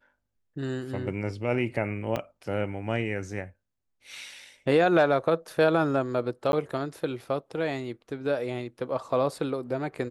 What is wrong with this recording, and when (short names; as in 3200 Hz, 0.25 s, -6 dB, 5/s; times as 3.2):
2.16 gap 4.8 ms
6.52–6.53 gap